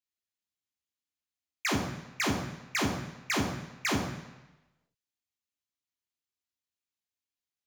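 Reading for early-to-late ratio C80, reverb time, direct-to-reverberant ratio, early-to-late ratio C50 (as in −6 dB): 8.5 dB, 1.0 s, 0.5 dB, 6.0 dB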